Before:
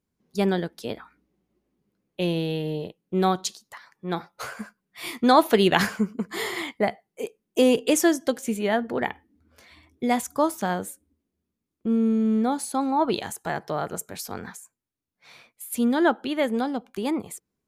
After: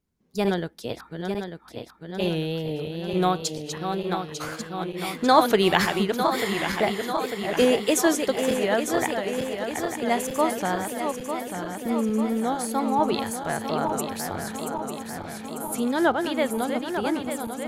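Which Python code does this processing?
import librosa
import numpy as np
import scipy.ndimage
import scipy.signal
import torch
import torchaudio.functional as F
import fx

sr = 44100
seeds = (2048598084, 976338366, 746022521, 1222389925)

y = fx.reverse_delay_fb(x, sr, ms=448, feedback_pct=79, wet_db=-6.5)
y = fx.dynamic_eq(y, sr, hz=230.0, q=1.4, threshold_db=-35.0, ratio=4.0, max_db=-5)
y = fx.wow_flutter(y, sr, seeds[0], rate_hz=2.1, depth_cents=55.0)
y = fx.low_shelf(y, sr, hz=95.0, db=6.5)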